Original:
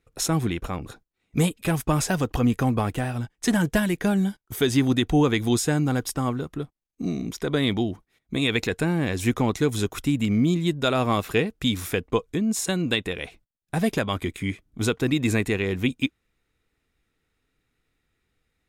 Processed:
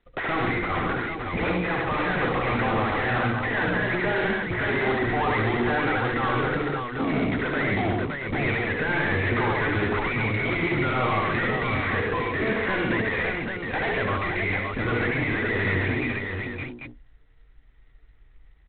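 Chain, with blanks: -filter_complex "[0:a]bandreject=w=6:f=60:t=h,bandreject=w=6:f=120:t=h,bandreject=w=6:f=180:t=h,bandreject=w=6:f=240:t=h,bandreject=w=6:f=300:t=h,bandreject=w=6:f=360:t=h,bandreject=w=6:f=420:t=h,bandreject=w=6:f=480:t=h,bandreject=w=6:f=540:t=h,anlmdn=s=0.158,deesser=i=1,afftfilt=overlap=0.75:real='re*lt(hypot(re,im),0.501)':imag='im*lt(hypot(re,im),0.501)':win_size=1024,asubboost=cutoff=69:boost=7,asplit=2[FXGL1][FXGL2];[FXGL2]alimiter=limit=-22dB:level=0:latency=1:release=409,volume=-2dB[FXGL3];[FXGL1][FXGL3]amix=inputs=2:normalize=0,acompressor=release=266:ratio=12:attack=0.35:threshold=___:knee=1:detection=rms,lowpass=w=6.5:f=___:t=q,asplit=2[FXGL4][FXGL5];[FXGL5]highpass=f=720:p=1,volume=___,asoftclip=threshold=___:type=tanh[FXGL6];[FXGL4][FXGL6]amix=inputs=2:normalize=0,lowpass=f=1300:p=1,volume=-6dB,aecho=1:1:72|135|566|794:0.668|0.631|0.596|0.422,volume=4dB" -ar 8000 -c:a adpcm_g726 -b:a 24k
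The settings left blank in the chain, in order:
-36dB, 2000, 35dB, -22dB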